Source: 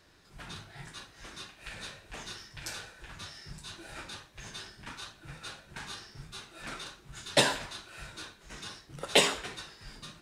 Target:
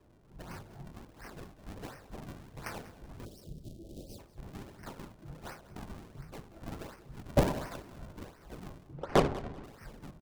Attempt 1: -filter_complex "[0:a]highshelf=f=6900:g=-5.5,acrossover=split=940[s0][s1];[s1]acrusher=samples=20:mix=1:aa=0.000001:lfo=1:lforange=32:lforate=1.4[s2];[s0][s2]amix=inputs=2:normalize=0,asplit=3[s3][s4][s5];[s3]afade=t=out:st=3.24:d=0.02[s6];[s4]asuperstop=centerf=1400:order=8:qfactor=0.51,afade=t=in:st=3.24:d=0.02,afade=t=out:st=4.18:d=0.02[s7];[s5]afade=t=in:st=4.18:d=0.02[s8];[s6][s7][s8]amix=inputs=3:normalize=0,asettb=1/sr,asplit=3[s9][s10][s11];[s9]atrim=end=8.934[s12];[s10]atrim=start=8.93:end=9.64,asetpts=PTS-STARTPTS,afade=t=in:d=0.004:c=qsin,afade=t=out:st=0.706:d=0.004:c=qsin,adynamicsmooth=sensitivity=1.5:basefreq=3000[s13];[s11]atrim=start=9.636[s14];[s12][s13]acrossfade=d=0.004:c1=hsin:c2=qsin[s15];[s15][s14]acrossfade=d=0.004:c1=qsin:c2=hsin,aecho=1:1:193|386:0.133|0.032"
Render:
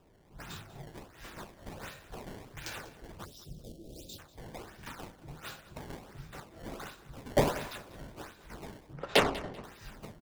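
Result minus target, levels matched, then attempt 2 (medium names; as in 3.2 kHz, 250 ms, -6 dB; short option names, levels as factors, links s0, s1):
decimation with a swept rate: distortion -21 dB
-filter_complex "[0:a]highshelf=f=6900:g=-5.5,acrossover=split=940[s0][s1];[s1]acrusher=samples=58:mix=1:aa=0.000001:lfo=1:lforange=92.8:lforate=1.4[s2];[s0][s2]amix=inputs=2:normalize=0,asplit=3[s3][s4][s5];[s3]afade=t=out:st=3.24:d=0.02[s6];[s4]asuperstop=centerf=1400:order=8:qfactor=0.51,afade=t=in:st=3.24:d=0.02,afade=t=out:st=4.18:d=0.02[s7];[s5]afade=t=in:st=4.18:d=0.02[s8];[s6][s7][s8]amix=inputs=3:normalize=0,asettb=1/sr,asplit=3[s9][s10][s11];[s9]atrim=end=8.934[s12];[s10]atrim=start=8.93:end=9.64,asetpts=PTS-STARTPTS,afade=t=in:d=0.004:c=qsin,afade=t=out:st=0.706:d=0.004:c=qsin,adynamicsmooth=sensitivity=1.5:basefreq=3000[s13];[s11]atrim=start=9.636[s14];[s12][s13]acrossfade=d=0.004:c1=hsin:c2=qsin[s15];[s15][s14]acrossfade=d=0.004:c1=qsin:c2=hsin,aecho=1:1:193|386:0.133|0.032"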